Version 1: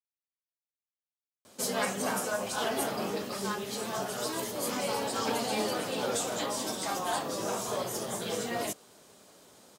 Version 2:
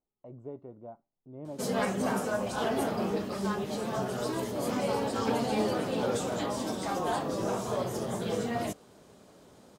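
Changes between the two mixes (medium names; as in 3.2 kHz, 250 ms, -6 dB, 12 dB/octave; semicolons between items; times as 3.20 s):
speech: entry -1.55 s; master: add tilt EQ -2.5 dB/octave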